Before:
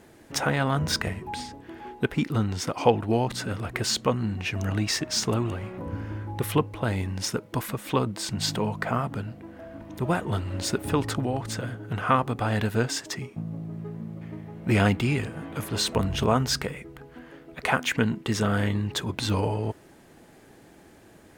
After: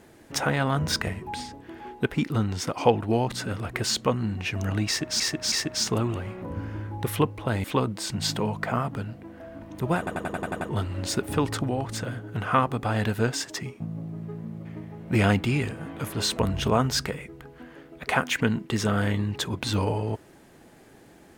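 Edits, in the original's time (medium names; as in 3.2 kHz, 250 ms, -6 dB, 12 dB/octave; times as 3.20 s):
4.88–5.20 s: loop, 3 plays
7.00–7.83 s: delete
10.17 s: stutter 0.09 s, 8 plays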